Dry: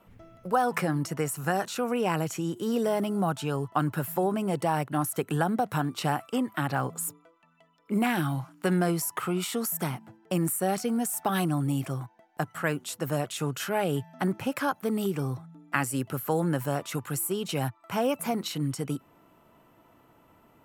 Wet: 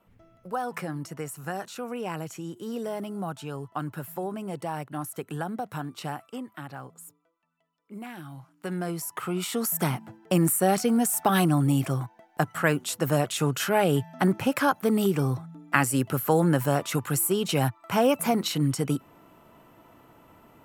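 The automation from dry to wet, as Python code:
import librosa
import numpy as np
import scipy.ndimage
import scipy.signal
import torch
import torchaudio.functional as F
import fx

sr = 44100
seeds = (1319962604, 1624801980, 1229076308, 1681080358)

y = fx.gain(x, sr, db=fx.line((6.03, -6.0), (7.04, -14.0), (8.24, -14.0), (8.66, -7.5), (9.9, 5.0)))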